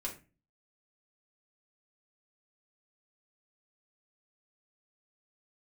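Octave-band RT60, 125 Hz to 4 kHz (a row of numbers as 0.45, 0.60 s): 0.55, 0.50, 0.35, 0.30, 0.30, 0.25 s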